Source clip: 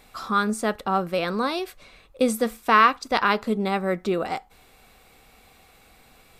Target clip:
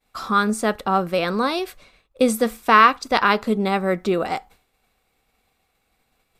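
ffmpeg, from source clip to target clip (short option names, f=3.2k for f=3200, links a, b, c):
-af "agate=range=-33dB:threshold=-42dB:ratio=3:detection=peak,volume=3.5dB"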